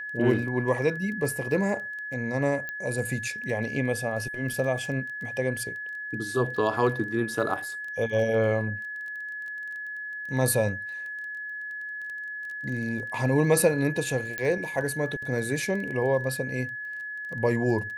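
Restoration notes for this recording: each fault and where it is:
crackle 17 per s -35 dBFS
whine 1.7 kHz -33 dBFS
2.69 s: pop -20 dBFS
14.38 s: pop -15 dBFS

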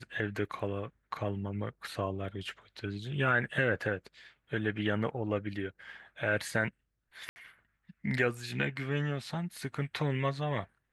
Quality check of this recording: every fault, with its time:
7.29–7.36 s: dropout 70 ms

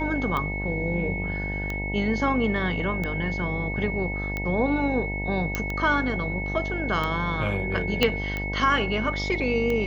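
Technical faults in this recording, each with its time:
buzz 50 Hz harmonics 19 -31 dBFS
tick 45 rpm -16 dBFS
whine 2.2 kHz -31 dBFS
5.55 s: pop -11 dBFS
8.03 s: pop -6 dBFS

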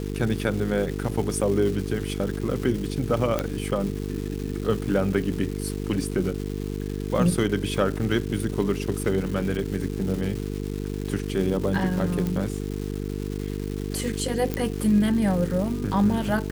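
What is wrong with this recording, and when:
buzz 50 Hz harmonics 9 -30 dBFS
crackle 570 per s -32 dBFS
3.39 s: pop -10 dBFS
12.27 s: pop -15 dBFS
14.54 s: pop -12 dBFS

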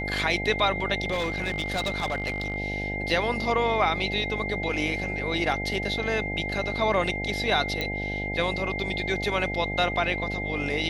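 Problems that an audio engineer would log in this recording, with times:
buzz 50 Hz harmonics 17 -33 dBFS
whine 2.1 kHz -31 dBFS
1.11–2.56 s: clipped -23 dBFS
7.81 s: pop -14 dBFS

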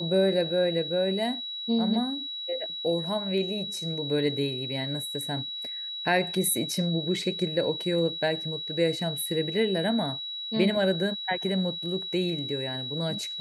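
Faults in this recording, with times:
whine 3.9 kHz -33 dBFS

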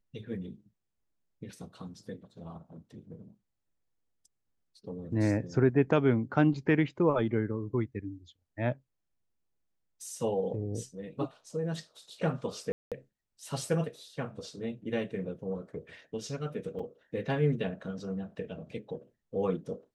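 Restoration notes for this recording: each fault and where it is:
12.72–12.92 s: dropout 197 ms
16.79 s: dropout 4.7 ms

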